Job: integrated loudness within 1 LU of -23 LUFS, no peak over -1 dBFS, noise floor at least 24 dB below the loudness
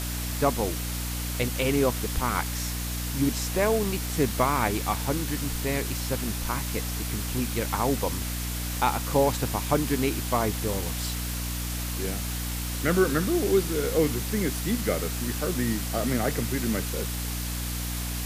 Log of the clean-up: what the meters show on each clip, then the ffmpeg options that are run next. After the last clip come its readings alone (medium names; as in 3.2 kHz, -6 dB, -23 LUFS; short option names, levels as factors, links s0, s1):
hum 60 Hz; highest harmonic 300 Hz; hum level -30 dBFS; noise floor -31 dBFS; noise floor target -51 dBFS; loudness -27.0 LUFS; peak level -9.0 dBFS; loudness target -23.0 LUFS
-> -af "bandreject=f=60:t=h:w=4,bandreject=f=120:t=h:w=4,bandreject=f=180:t=h:w=4,bandreject=f=240:t=h:w=4,bandreject=f=300:t=h:w=4"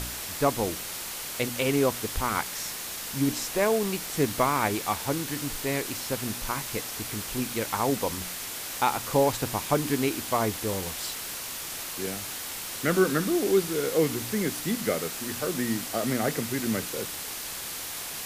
hum not found; noise floor -36 dBFS; noise floor target -52 dBFS
-> -af "afftdn=nr=16:nf=-36"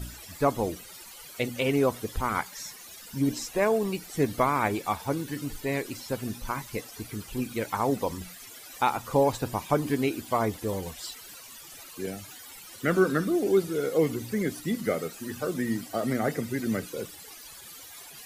noise floor -46 dBFS; noise floor target -53 dBFS
-> -af "afftdn=nr=7:nf=-46"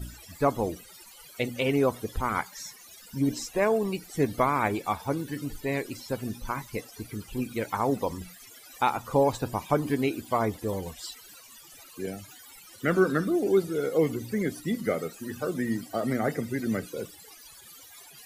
noise floor -50 dBFS; noise floor target -53 dBFS
-> -af "afftdn=nr=6:nf=-50"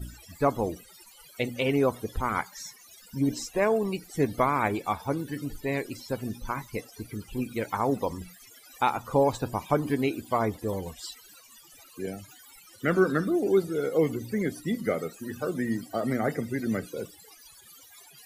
noise floor -53 dBFS; loudness -29.0 LUFS; peak level -9.5 dBFS; loudness target -23.0 LUFS
-> -af "volume=2"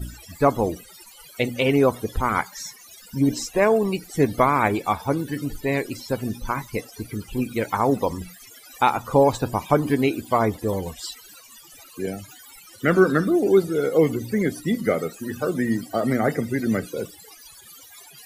loudness -23.0 LUFS; peak level -3.5 dBFS; noise floor -47 dBFS